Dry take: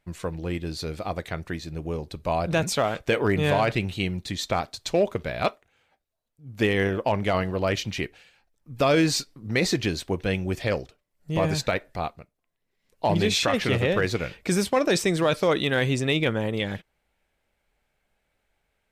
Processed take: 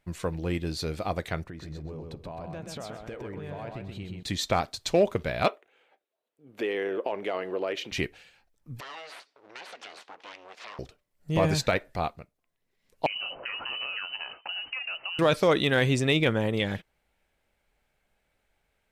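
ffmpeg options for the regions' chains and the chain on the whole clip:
-filter_complex "[0:a]asettb=1/sr,asplit=3[s0][s1][s2];[s0]atrim=end=1.444[s3];[s1]atrim=start=1.44:end=4.23,asetpts=PTS-STARTPTS,afade=t=in:d=0.004:c=qsin,afade=t=out:st=2.786:d=0.004:c=qsin,highshelf=f=2200:g=-11.5,acompressor=threshold=0.0141:ratio=6:attack=3.2:release=140:knee=1:detection=peak,aecho=1:1:128|256|384:0.631|0.139|0.0305,atrim=end_sample=123039[s4];[s2]atrim=start=4.226[s5];[s3][s4]acrossfade=d=0.004:c1=hsin:c2=qsin[s6];[s6][s5]acrossfade=d=0.004:c1=qsin:c2=hsin,asettb=1/sr,asplit=3[s7][s8][s9];[s7]atrim=end=5.484[s10];[s8]atrim=start=5.48:end=7.92,asetpts=PTS-STARTPTS,afade=t=in:d=0.004:c=qsin,afade=t=out:st=2.436:d=0.004:c=qsin,highshelf=f=4000:t=q:w=1.5:g=-6,acompressor=threshold=0.0316:ratio=4:attack=3.2:release=140:knee=1:detection=peak,highpass=f=390:t=q:w=2.1[s11];[s9]atrim=start=7.916[s12];[s10][s11]acrossfade=d=0.004:c1=hsin:c2=qsin[s13];[s13][s12]acrossfade=d=0.004:c1=qsin:c2=hsin,asettb=1/sr,asplit=3[s14][s15][s16];[s14]atrim=end=8.804[s17];[s15]atrim=start=8.8:end=10.79,asetpts=PTS-STARTPTS,afade=t=in:d=0.004:c=qsin,afade=t=out:st=1.986:d=0.004:c=qsin,acompressor=threshold=0.0251:ratio=6:attack=3.2:release=140:knee=1:detection=peak,aeval=exprs='abs(val(0))':c=same,highpass=670,lowpass=4300[s18];[s16]atrim=start=10.786[s19];[s17][s18]acrossfade=d=0.004:c1=hsin:c2=qsin[s20];[s20][s19]acrossfade=d=0.004:c1=qsin:c2=hsin,asettb=1/sr,asplit=3[s21][s22][s23];[s21]atrim=end=13.064[s24];[s22]atrim=start=13.06:end=15.19,asetpts=PTS-STARTPTS,afade=t=in:d=0.004:c=qsin,afade=t=out:st=2.126:d=0.004:c=qsin,highpass=55,acompressor=threshold=0.0282:ratio=8:attack=3.2:release=140:knee=1:detection=peak,lowpass=f=2600:t=q:w=0.5098,lowpass=f=2600:t=q:w=0.6013,lowpass=f=2600:t=q:w=0.9,lowpass=f=2600:t=q:w=2.563,afreqshift=-3100[s25];[s23]atrim=start=15.186[s26];[s24][s25]acrossfade=d=0.004:c1=hsin:c2=qsin[s27];[s27][s26]acrossfade=d=0.004:c1=qsin:c2=hsin"

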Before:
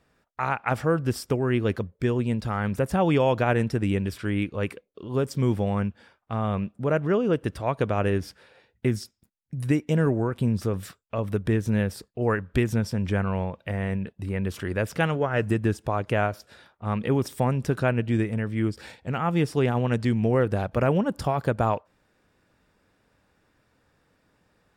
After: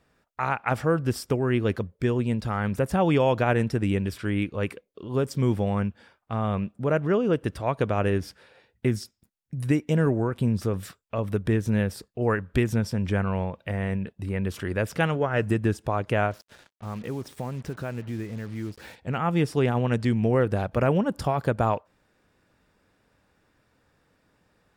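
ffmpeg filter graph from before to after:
-filter_complex "[0:a]asettb=1/sr,asplit=3[s0][s1][s2];[s0]atrim=end=16.314[s3];[s1]atrim=start=16.31:end=18.96,asetpts=PTS-STARTPTS,afade=t=in:d=0.004:c=qsin,afade=t=out:st=2.646:d=0.004:c=qsin,aemphasis=mode=reproduction:type=cd,acompressor=threshold=0.0178:ratio=2:attack=3.2:release=140:knee=1:detection=peak,acrusher=bits=7:mix=0:aa=0.5[s4];[s2]atrim=start=18.956[s5];[s3][s4]acrossfade=d=0.004:c1=hsin:c2=qsin[s6];[s6][s5]acrossfade=d=0.004:c1=qsin:c2=hsin"

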